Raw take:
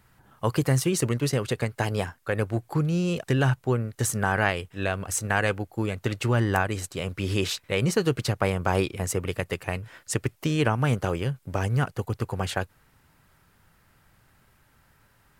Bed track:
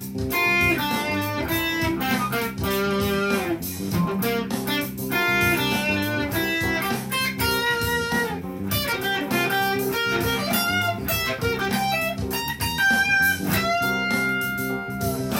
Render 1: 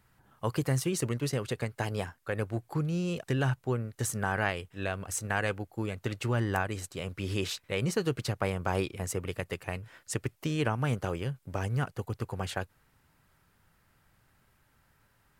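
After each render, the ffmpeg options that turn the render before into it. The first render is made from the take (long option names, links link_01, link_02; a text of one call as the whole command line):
ffmpeg -i in.wav -af "volume=-6dB" out.wav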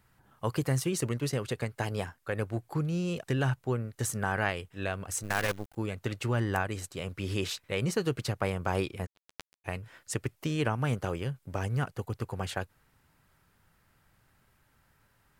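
ffmpeg -i in.wav -filter_complex "[0:a]asettb=1/sr,asplit=3[link_01][link_02][link_03];[link_01]atrim=end=5.234[link_04];[link_02]atrim=start=5.23:end=5.76,asetpts=PTS-STARTPTS,afade=type=in:duration=0.004:curve=qsin,afade=type=out:start_time=0.526:duration=0.004:curve=qsin,acrusher=bits=6:dc=4:mix=0:aa=0.000001[link_05];[link_03]atrim=start=5.756[link_06];[link_04][link_05]acrossfade=duration=0.004:curve1=hsin:curve2=qsin[link_07];[link_07][link_06]acrossfade=duration=0.004:curve1=qsin:curve2=hsin,asplit=3[link_08][link_09][link_10];[link_08]afade=type=out:start_time=9.05:duration=0.02[link_11];[link_09]acrusher=bits=2:mix=0:aa=0.5,afade=type=in:start_time=9.05:duration=0.02,afade=type=out:start_time=9.64:duration=0.02[link_12];[link_10]afade=type=in:start_time=9.64:duration=0.02[link_13];[link_11][link_12][link_13]amix=inputs=3:normalize=0" out.wav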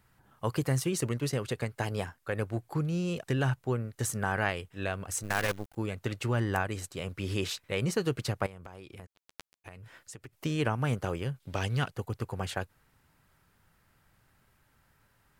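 ffmpeg -i in.wav -filter_complex "[0:a]asettb=1/sr,asplit=3[link_01][link_02][link_03];[link_01]atrim=end=8.464[link_04];[link_02]atrim=start=8.46:end=10.33,asetpts=PTS-STARTPTS,afade=type=in:duration=0.004:curve=qsin,afade=type=out:start_time=1.866:duration=0.004:curve=qsin,acompressor=threshold=-42dB:ratio=12:attack=3.2:release=140:knee=1:detection=peak[link_05];[link_03]atrim=start=10.326[link_06];[link_04][link_05]acrossfade=duration=0.004:curve1=hsin:curve2=qsin[link_07];[link_07][link_06]acrossfade=duration=0.004:curve1=qsin:curve2=hsin,asettb=1/sr,asplit=3[link_08][link_09][link_10];[link_08]atrim=end=11.404[link_11];[link_09]atrim=start=11.4:end=11.9,asetpts=PTS-STARTPTS,afade=type=in:duration=0.004:curve=qsin,afade=type=out:start_time=0.496:duration=0.004:curve=qsin,equalizer=frequency=3600:width_type=o:width=1.2:gain=12.5[link_12];[link_10]atrim=start=11.896[link_13];[link_11][link_12]acrossfade=duration=0.004:curve1=hsin:curve2=qsin[link_14];[link_14][link_13]acrossfade=duration=0.004:curve1=qsin:curve2=hsin" out.wav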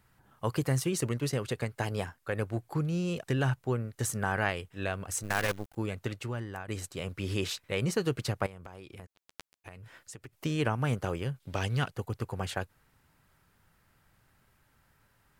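ffmpeg -i in.wav -filter_complex "[0:a]asplit=2[link_01][link_02];[link_01]atrim=end=6.68,asetpts=PTS-STARTPTS,afade=type=out:start_time=6:duration=0.68:curve=qua:silence=0.266073[link_03];[link_02]atrim=start=6.68,asetpts=PTS-STARTPTS,afade=type=in:duration=0.004:curve=hsin:silence=0.266073[link_04];[link_03][link_04]concat=n=2:v=0:a=1" out.wav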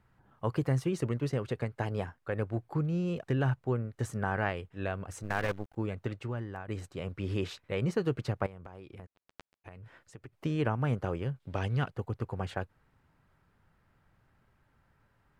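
ffmpeg -i in.wav -af "lowpass=frequency=1500:poles=1" out.wav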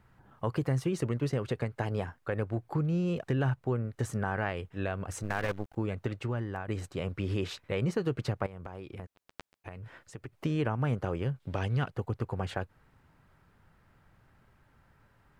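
ffmpeg -i in.wav -filter_complex "[0:a]asplit=2[link_01][link_02];[link_02]alimiter=level_in=0.5dB:limit=-24dB:level=0:latency=1:release=131,volume=-0.5dB,volume=-2dB[link_03];[link_01][link_03]amix=inputs=2:normalize=0,acompressor=threshold=-32dB:ratio=1.5" out.wav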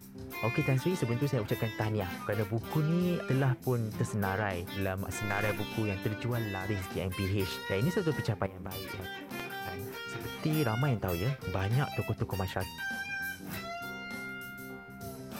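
ffmpeg -i in.wav -i bed.wav -filter_complex "[1:a]volume=-17.5dB[link_01];[0:a][link_01]amix=inputs=2:normalize=0" out.wav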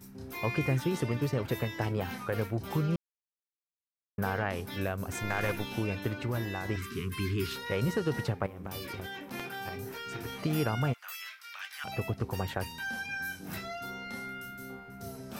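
ffmpeg -i in.wav -filter_complex "[0:a]asettb=1/sr,asplit=3[link_01][link_02][link_03];[link_01]atrim=end=6.764[link_04];[link_02]atrim=start=6.76:end=7.56,asetpts=PTS-STARTPTS,afade=type=in:duration=0.004:curve=qsin,afade=type=out:start_time=0.796:duration=0.004:curve=qsin,asuperstop=centerf=660:order=20:qfactor=1.2[link_05];[link_03]atrim=start=7.556[link_06];[link_04][link_05]acrossfade=duration=0.004:curve1=hsin:curve2=qsin[link_07];[link_07][link_06]acrossfade=duration=0.004:curve1=qsin:curve2=hsin,asplit=3[link_08][link_09][link_10];[link_08]afade=type=out:start_time=10.92:duration=0.02[link_11];[link_09]highpass=frequency=1400:width=0.5412,highpass=frequency=1400:width=1.3066,afade=type=in:start_time=10.92:duration=0.02,afade=type=out:start_time=11.84:duration=0.02[link_12];[link_10]afade=type=in:start_time=11.84:duration=0.02[link_13];[link_11][link_12][link_13]amix=inputs=3:normalize=0,asplit=3[link_14][link_15][link_16];[link_14]atrim=end=2.96,asetpts=PTS-STARTPTS,afade=type=out:start_time=2.956:duration=0.004:curve=hsin[link_17];[link_15]atrim=start=2.96:end=4.18,asetpts=PTS-STARTPTS,volume=0[link_18];[link_16]atrim=start=4.18,asetpts=PTS-STARTPTS,afade=type=in:duration=0.004:curve=hsin[link_19];[link_17][link_18][link_19]concat=n=3:v=0:a=1" out.wav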